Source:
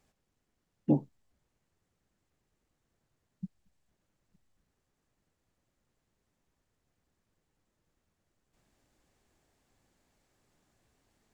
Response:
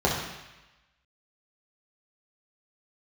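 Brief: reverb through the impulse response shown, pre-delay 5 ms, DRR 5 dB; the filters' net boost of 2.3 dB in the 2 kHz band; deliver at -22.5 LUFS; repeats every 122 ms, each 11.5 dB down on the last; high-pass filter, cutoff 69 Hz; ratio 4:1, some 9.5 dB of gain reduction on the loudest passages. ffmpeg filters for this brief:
-filter_complex "[0:a]highpass=69,equalizer=f=2000:t=o:g=3,acompressor=threshold=0.0251:ratio=4,aecho=1:1:122|244|366:0.266|0.0718|0.0194,asplit=2[s0][s1];[1:a]atrim=start_sample=2205,adelay=5[s2];[s1][s2]afir=irnorm=-1:irlink=0,volume=0.0944[s3];[s0][s3]amix=inputs=2:normalize=0,volume=9.44"

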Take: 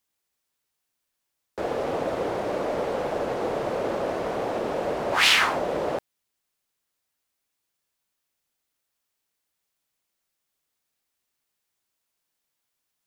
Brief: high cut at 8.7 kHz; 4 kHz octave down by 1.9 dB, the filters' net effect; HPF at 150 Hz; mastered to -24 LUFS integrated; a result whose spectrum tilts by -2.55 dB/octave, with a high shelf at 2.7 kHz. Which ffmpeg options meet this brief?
-af "highpass=150,lowpass=8700,highshelf=f=2700:g=4,equalizer=f=4000:t=o:g=-6,volume=1.26"

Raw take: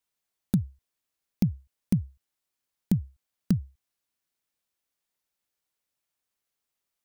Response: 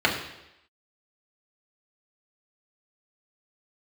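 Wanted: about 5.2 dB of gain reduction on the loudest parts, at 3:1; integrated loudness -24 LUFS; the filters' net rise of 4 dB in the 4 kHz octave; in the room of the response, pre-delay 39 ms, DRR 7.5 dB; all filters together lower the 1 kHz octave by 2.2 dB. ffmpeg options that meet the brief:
-filter_complex "[0:a]equalizer=f=1000:t=o:g=-3.5,equalizer=f=4000:t=o:g=5,acompressor=threshold=0.0562:ratio=3,asplit=2[s0][s1];[1:a]atrim=start_sample=2205,adelay=39[s2];[s1][s2]afir=irnorm=-1:irlink=0,volume=0.0596[s3];[s0][s3]amix=inputs=2:normalize=0,volume=3.35"

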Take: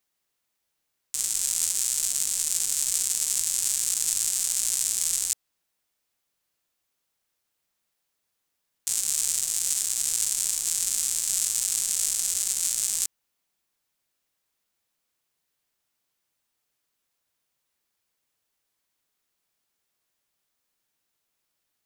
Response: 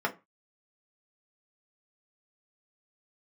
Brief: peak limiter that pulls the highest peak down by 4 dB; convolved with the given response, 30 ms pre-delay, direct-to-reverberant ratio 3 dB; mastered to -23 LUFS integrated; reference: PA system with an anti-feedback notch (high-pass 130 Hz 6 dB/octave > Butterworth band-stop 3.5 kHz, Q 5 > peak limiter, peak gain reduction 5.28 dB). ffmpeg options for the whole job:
-filter_complex "[0:a]alimiter=limit=0.355:level=0:latency=1,asplit=2[s0][s1];[1:a]atrim=start_sample=2205,adelay=30[s2];[s1][s2]afir=irnorm=-1:irlink=0,volume=0.237[s3];[s0][s3]amix=inputs=2:normalize=0,highpass=f=130:p=1,asuperstop=centerf=3500:order=8:qfactor=5,volume=2.11,alimiter=limit=0.376:level=0:latency=1"

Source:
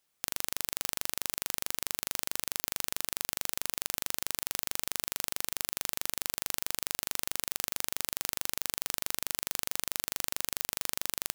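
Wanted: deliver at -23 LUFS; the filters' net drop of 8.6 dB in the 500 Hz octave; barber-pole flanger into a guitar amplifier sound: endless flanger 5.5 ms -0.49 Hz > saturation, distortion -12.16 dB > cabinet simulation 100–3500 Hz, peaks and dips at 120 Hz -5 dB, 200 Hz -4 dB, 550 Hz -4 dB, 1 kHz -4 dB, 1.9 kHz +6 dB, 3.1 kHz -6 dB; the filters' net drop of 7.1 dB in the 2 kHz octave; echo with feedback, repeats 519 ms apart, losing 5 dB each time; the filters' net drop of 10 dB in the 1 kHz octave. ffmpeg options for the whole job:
-filter_complex "[0:a]equalizer=f=500:t=o:g=-6.5,equalizer=f=1000:t=o:g=-6.5,equalizer=f=2000:t=o:g=-9,aecho=1:1:519|1038|1557|2076|2595|3114|3633:0.562|0.315|0.176|0.0988|0.0553|0.031|0.0173,asplit=2[s0][s1];[s1]adelay=5.5,afreqshift=-0.49[s2];[s0][s2]amix=inputs=2:normalize=1,asoftclip=threshold=0.158,highpass=100,equalizer=f=120:t=q:w=4:g=-5,equalizer=f=200:t=q:w=4:g=-4,equalizer=f=550:t=q:w=4:g=-4,equalizer=f=1000:t=q:w=4:g=-4,equalizer=f=1900:t=q:w=4:g=6,equalizer=f=3100:t=q:w=4:g=-6,lowpass=f=3500:w=0.5412,lowpass=f=3500:w=1.3066,volume=29.9"

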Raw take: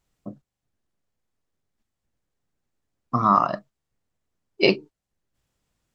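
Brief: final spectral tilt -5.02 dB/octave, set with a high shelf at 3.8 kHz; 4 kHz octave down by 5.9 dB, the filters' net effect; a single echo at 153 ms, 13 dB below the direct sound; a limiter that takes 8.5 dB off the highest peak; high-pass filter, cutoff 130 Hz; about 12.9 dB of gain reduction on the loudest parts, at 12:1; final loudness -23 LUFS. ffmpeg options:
-af "highpass=130,highshelf=f=3800:g=-3.5,equalizer=f=4000:t=o:g=-6.5,acompressor=threshold=0.0501:ratio=12,alimiter=limit=0.0668:level=0:latency=1,aecho=1:1:153:0.224,volume=5.62"

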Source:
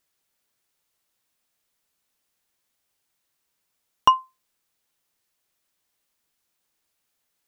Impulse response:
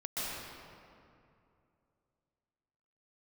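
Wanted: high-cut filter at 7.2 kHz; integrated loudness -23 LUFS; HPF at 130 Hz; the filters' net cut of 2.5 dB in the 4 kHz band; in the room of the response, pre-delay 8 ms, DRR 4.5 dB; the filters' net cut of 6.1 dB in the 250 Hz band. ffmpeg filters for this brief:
-filter_complex "[0:a]highpass=130,lowpass=7200,equalizer=f=250:t=o:g=-8,equalizer=f=4000:t=o:g=-4.5,asplit=2[s0][s1];[1:a]atrim=start_sample=2205,adelay=8[s2];[s1][s2]afir=irnorm=-1:irlink=0,volume=0.335[s3];[s0][s3]amix=inputs=2:normalize=0,volume=1.26"

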